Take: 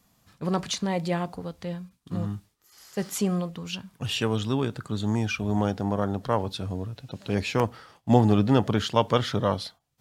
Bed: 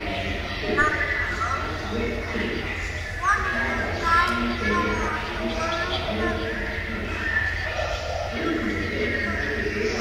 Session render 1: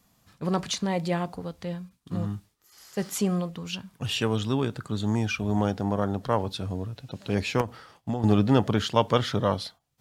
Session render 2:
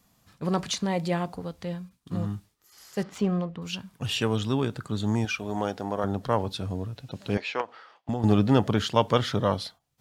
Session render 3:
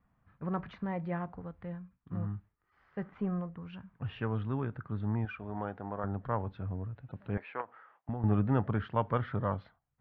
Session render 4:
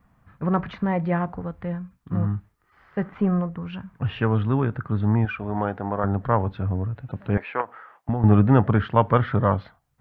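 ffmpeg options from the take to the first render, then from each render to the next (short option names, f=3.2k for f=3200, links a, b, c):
-filter_complex "[0:a]asettb=1/sr,asplit=3[a][b][c];[a]atrim=end=7.614[d];[b]atrim=start=7.61:end=8.24,asetpts=PTS-STARTPTS,afade=t=in:d=0.004:c=qsin,afade=t=out:st=0.626:d=0.004:c=qsin,acompressor=threshold=-24dB:ratio=8:attack=3.2:release=140:knee=1:detection=peak[e];[c]atrim=start=8.236[f];[d][e]acrossfade=d=0.004:c1=hsin:c2=qsin[g];[g][f]acrossfade=d=0.004:c1=qsin:c2=hsin"
-filter_complex "[0:a]asettb=1/sr,asplit=3[a][b][c];[a]atrim=end=3.034[d];[b]atrim=start=3.03:end=3.62,asetpts=PTS-STARTPTS,afade=t=in:d=0.004:c=qsin,afade=t=out:st=0.586:d=0.004:c=qsin,adynamicsmooth=sensitivity=3:basefreq=2.2k[e];[c]atrim=start=3.616[f];[d][e]acrossfade=d=0.004:c1=hsin:c2=qsin[g];[g][f]acrossfade=d=0.004:c1=qsin:c2=hsin,asettb=1/sr,asplit=3[h][i][j];[h]atrim=end=5.254[k];[i]atrim=start=5.25:end=6.04,asetpts=PTS-STARTPTS,afade=t=in:d=0.004:c=qsin,afade=t=out:st=0.786:d=0.004:c=qsin,bass=f=250:g=-11,treble=f=4k:g=0[l];[j]atrim=start=6.036[m];[k][l]acrossfade=d=0.004:c1=hsin:c2=qsin[n];[n][m]acrossfade=d=0.004:c1=qsin:c2=hsin,asettb=1/sr,asplit=3[o][p][q];[o]atrim=end=7.374[r];[p]atrim=start=7.37:end=8.09,asetpts=PTS-STARTPTS,afade=t=in:d=0.004:c=qsin,afade=t=out:st=0.716:d=0.004:c=qsin,highpass=550,lowpass=3.6k[s];[q]atrim=start=8.086[t];[r][s]acrossfade=d=0.004:c1=hsin:c2=qsin[u];[u][t]acrossfade=d=0.004:c1=qsin:c2=hsin"
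-af "lowpass=f=1.7k:w=0.5412,lowpass=f=1.7k:w=1.3066,equalizer=f=420:w=0.34:g=-10.5"
-af "volume=12dB"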